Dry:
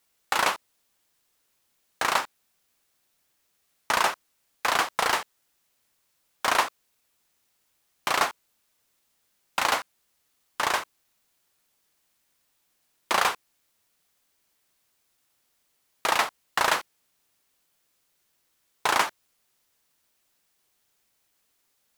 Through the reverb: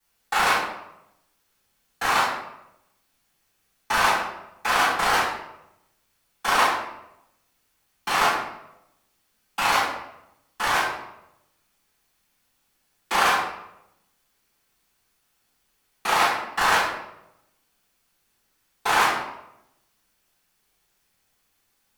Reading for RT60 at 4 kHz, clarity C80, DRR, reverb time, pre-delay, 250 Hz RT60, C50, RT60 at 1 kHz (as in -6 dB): 0.60 s, 5.0 dB, -15.0 dB, 0.85 s, 3 ms, 0.95 s, 1.5 dB, 0.80 s